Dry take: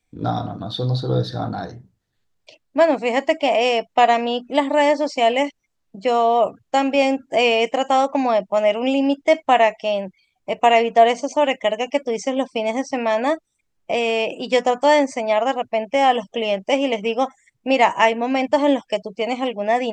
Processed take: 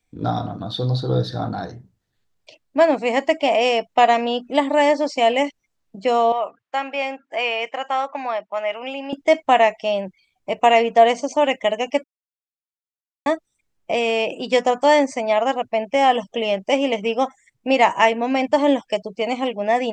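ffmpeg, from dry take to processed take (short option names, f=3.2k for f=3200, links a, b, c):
-filter_complex "[0:a]asettb=1/sr,asplit=3[a][b][c];[a]atrim=end=6.324[d];[b]atrim=start=6.32:end=9.13,asetpts=PTS-STARTPTS,afade=t=in:d=0.004:c=qsin,afade=t=out:st=2.806:d=0.004:c=qsin,bandpass=f=1.6k:t=q:w=0.99[e];[c]atrim=start=9.126[f];[d][e]acrossfade=d=0.004:c1=hsin:c2=qsin[g];[g][f]acrossfade=d=0.004:c1=qsin:c2=hsin,asplit=3[h][i][j];[h]atrim=end=12.04,asetpts=PTS-STARTPTS,afade=t=out:st=12.036:d=0.004:c=hsin[k];[i]atrim=start=12.04:end=13.26,asetpts=PTS-STARTPTS,volume=0[l];[j]atrim=start=13.26,asetpts=PTS-STARTPTS,afade=t=in:d=0.004:c=hsin[m];[k][l][m]concat=n=3:v=0:a=1"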